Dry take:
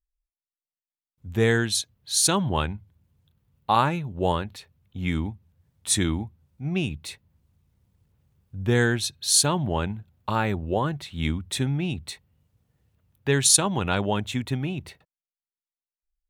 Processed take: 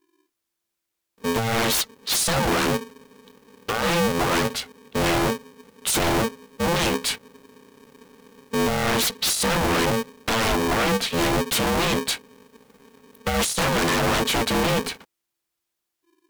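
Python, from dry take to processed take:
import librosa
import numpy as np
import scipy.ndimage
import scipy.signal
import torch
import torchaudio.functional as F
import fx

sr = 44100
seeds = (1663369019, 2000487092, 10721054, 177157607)

y = fx.over_compress(x, sr, threshold_db=-25.0, ratio=-0.5)
y = fx.fold_sine(y, sr, drive_db=17, ceiling_db=-9.5)
y = y * np.sign(np.sin(2.0 * np.pi * 340.0 * np.arange(len(y)) / sr))
y = F.gain(torch.from_numpy(y), -8.5).numpy()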